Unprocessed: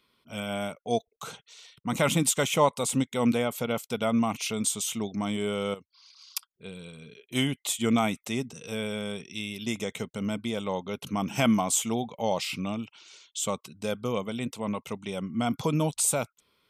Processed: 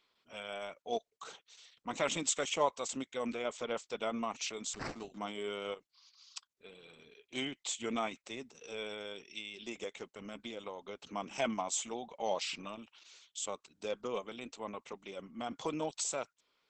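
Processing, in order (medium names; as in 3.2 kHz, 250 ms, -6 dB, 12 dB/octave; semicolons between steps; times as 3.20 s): high-pass 350 Hz 12 dB/octave; 4.74–5.18 s: sample-rate reducer 3.4 kHz, jitter 0%; 7.49–8.58 s: treble shelf 10 kHz -4.5 dB; 10.33–11.05 s: compression 16:1, threshold -32 dBFS, peak gain reduction 6.5 dB; tremolo saw down 0.58 Hz, depth 30%; trim -5 dB; Opus 10 kbps 48 kHz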